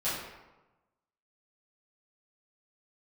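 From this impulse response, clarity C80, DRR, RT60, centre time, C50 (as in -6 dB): 3.5 dB, -12.5 dB, 1.1 s, 71 ms, 0.5 dB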